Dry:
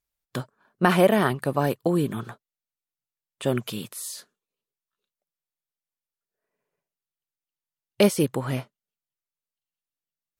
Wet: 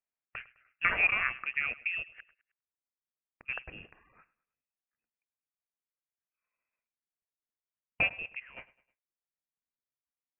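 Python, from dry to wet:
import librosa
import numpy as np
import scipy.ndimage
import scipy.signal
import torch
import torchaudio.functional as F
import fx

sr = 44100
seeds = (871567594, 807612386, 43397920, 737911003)

p1 = scipy.signal.sosfilt(scipy.signal.butter(2, 470.0, 'highpass', fs=sr, output='sos'), x)
p2 = fx.gate_flip(p1, sr, shuts_db=-26.0, range_db=-31, at=(2.02, 3.48), fade=0.02)
p3 = fx.level_steps(p2, sr, step_db=16, at=(8.08, 8.56), fade=0.02)
p4 = p3 + fx.echo_feedback(p3, sr, ms=104, feedback_pct=43, wet_db=-20, dry=0)
p5 = fx.freq_invert(p4, sr, carrier_hz=3000)
y = p5 * 10.0 ** (-6.0 / 20.0)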